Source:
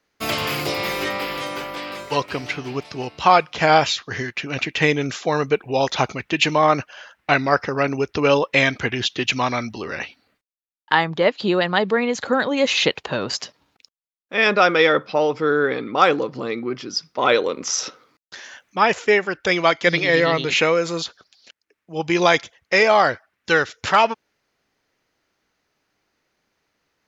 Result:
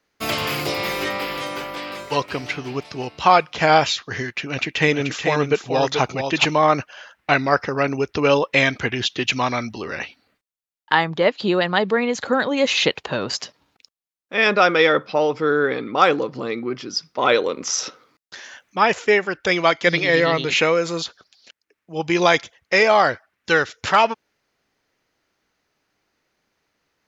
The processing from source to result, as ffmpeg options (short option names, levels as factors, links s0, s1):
-filter_complex "[0:a]asettb=1/sr,asplit=3[s0][s1][s2];[s0]atrim=end=4.424[s3];[s1]atrim=start=4.42:end=6.45,asetpts=PTS-STARTPTS,afade=t=in:d=0.004:c=qsin,afade=t=out:st=2.026:d=0.004:c=qsin,aecho=1:1:433:0.473,atrim=end_sample=89523[s4];[s2]atrim=start=6.446[s5];[s3][s4]acrossfade=d=0.004:c1=hsin:c2=qsin[s6];[s6][s5]acrossfade=d=0.004:c1=qsin:c2=hsin"